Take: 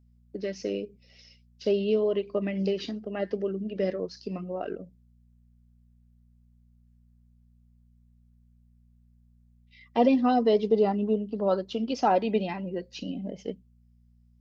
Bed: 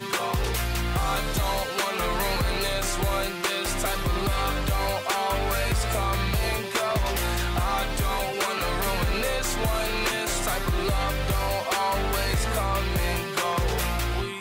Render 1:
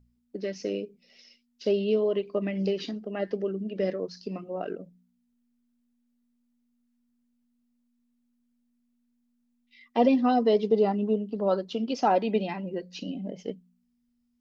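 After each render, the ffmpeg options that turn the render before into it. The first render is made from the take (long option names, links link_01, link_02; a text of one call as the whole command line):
ffmpeg -i in.wav -af "bandreject=frequency=60:width_type=h:width=4,bandreject=frequency=120:width_type=h:width=4,bandreject=frequency=180:width_type=h:width=4" out.wav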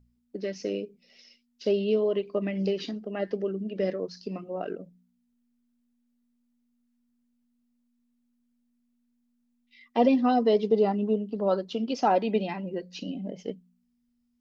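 ffmpeg -i in.wav -af anull out.wav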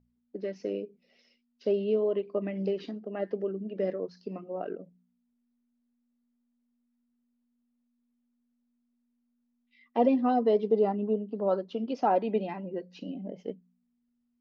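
ffmpeg -i in.wav -af "lowpass=frequency=1100:poles=1,lowshelf=frequency=140:gain=-11.5" out.wav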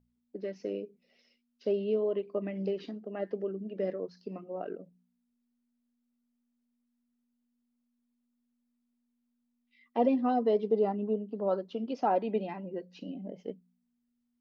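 ffmpeg -i in.wav -af "volume=-2.5dB" out.wav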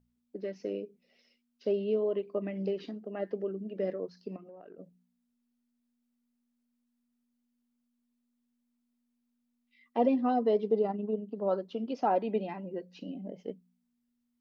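ffmpeg -i in.wav -filter_complex "[0:a]asettb=1/sr,asplit=3[link_01][link_02][link_03];[link_01]atrim=end=4.364[link_04];[link_02]atrim=start=4.36:end=4.78,asetpts=PTS-STARTPTS,afade=type=in:duration=0.004:curve=qsin,afade=type=out:start_time=0.416:duration=0.004:curve=qsin,acompressor=threshold=-46dB:ratio=16:attack=3.2:release=140:knee=1:detection=peak[link_05];[link_03]atrim=start=4.776[link_06];[link_04][link_05]acrossfade=duration=0.004:curve1=hsin:curve2=qsin[link_07];[link_07][link_06]acrossfade=duration=0.004:curve1=qsin:curve2=hsin,asplit=3[link_08][link_09][link_10];[link_08]afade=type=out:start_time=10.79:duration=0.02[link_11];[link_09]tremolo=f=21:d=0.4,afade=type=in:start_time=10.79:duration=0.02,afade=type=out:start_time=11.42:duration=0.02[link_12];[link_10]afade=type=in:start_time=11.42:duration=0.02[link_13];[link_11][link_12][link_13]amix=inputs=3:normalize=0" out.wav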